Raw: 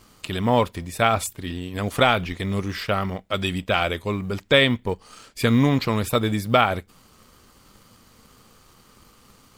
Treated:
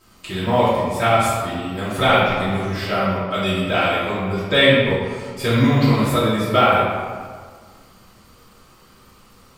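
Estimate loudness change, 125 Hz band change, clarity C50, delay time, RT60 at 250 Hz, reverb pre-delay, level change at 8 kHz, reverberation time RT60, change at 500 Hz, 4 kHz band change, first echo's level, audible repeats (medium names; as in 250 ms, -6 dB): +4.0 dB, +4.0 dB, -1.5 dB, no echo, 1.8 s, 3 ms, +0.5 dB, 1.7 s, +5.0 dB, +3.0 dB, no echo, no echo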